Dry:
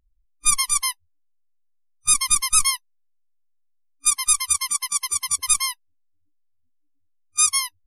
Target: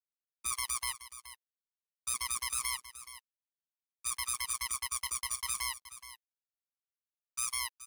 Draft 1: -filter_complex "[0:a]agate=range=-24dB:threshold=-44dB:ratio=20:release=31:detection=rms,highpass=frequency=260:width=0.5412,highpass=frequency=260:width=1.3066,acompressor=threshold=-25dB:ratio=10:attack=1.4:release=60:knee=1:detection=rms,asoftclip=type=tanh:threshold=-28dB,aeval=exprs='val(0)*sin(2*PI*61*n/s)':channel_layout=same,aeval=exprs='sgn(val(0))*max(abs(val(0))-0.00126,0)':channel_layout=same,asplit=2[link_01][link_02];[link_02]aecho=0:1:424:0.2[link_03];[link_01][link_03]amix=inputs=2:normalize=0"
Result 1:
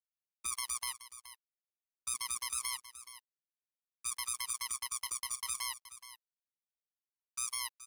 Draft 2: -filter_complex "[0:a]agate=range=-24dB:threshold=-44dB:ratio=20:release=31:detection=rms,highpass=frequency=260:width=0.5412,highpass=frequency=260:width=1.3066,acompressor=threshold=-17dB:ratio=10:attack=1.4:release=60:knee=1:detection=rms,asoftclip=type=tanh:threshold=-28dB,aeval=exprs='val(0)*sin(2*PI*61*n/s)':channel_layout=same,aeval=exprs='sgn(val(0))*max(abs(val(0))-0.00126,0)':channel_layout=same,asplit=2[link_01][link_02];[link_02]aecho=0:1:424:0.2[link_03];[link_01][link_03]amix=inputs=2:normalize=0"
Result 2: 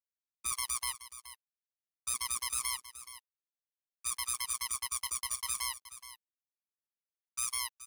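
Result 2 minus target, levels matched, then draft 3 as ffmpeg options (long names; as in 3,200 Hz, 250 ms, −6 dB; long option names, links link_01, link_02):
2,000 Hz band −2.5 dB
-filter_complex "[0:a]agate=range=-24dB:threshold=-44dB:ratio=20:release=31:detection=rms,highpass=frequency=260:width=0.5412,highpass=frequency=260:width=1.3066,adynamicequalizer=threshold=0.0158:dfrequency=1900:dqfactor=0.81:tfrequency=1900:tqfactor=0.81:attack=5:release=100:ratio=0.417:range=2:mode=boostabove:tftype=bell,acompressor=threshold=-17dB:ratio=10:attack=1.4:release=60:knee=1:detection=rms,asoftclip=type=tanh:threshold=-28dB,aeval=exprs='val(0)*sin(2*PI*61*n/s)':channel_layout=same,aeval=exprs='sgn(val(0))*max(abs(val(0))-0.00126,0)':channel_layout=same,asplit=2[link_01][link_02];[link_02]aecho=0:1:424:0.2[link_03];[link_01][link_03]amix=inputs=2:normalize=0"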